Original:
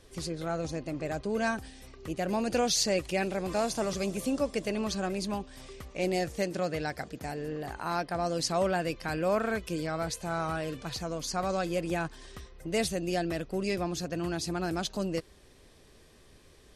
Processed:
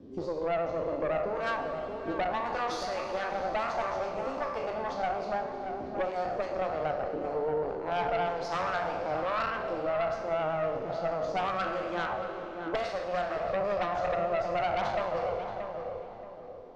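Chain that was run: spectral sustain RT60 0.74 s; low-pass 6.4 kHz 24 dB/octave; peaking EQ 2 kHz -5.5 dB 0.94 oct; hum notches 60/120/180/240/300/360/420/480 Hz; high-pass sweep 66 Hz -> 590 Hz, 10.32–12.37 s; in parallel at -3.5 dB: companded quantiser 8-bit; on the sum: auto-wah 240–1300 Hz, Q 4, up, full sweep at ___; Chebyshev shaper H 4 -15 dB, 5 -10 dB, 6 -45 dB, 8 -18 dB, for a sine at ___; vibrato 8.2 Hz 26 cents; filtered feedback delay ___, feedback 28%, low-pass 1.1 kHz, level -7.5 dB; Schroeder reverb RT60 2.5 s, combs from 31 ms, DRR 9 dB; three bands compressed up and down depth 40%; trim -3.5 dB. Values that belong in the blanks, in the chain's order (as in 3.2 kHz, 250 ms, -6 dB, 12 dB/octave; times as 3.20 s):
-19 dBFS, -19.5 dBFS, 628 ms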